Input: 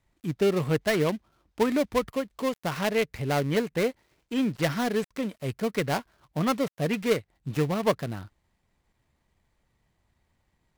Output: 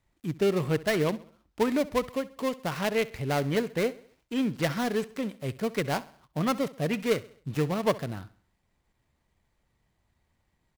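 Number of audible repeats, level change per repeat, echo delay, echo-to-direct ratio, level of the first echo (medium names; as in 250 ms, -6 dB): 3, -6.5 dB, 66 ms, -18.0 dB, -19.0 dB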